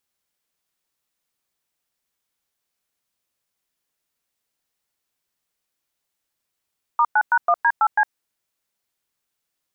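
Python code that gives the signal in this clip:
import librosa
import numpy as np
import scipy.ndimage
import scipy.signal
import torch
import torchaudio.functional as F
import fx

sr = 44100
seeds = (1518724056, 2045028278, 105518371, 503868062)

y = fx.dtmf(sr, digits='*9#1D8C', tone_ms=59, gap_ms=105, level_db=-16.0)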